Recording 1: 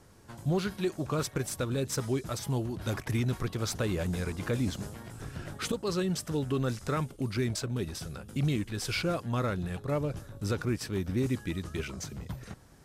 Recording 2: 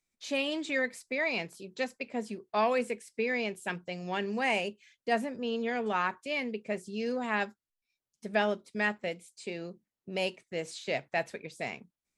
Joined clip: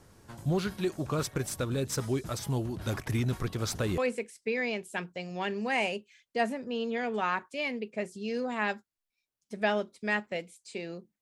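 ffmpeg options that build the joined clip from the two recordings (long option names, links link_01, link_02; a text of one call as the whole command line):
ffmpeg -i cue0.wav -i cue1.wav -filter_complex "[0:a]apad=whole_dur=11.21,atrim=end=11.21,atrim=end=3.982[link_01];[1:a]atrim=start=2.698:end=9.93[link_02];[link_01][link_02]acrossfade=duration=0.004:curve1=hsin:curve2=hsin" out.wav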